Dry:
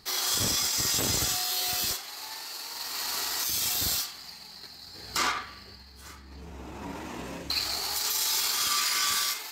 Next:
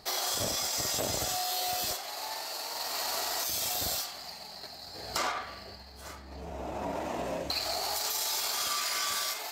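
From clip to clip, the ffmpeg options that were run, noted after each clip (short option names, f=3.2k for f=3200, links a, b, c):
-af "equalizer=f=640:w=2:g=14.5,acompressor=threshold=-30dB:ratio=3"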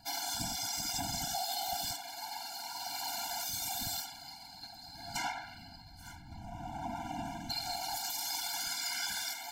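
-af "afftfilt=real='hypot(re,im)*cos(2*PI*random(0))':imag='hypot(re,im)*sin(2*PI*random(1))':win_size=512:overlap=0.75,afftfilt=real='re*eq(mod(floor(b*sr/1024/340),2),0)':imag='im*eq(mod(floor(b*sr/1024/340),2),0)':win_size=1024:overlap=0.75,volume=4dB"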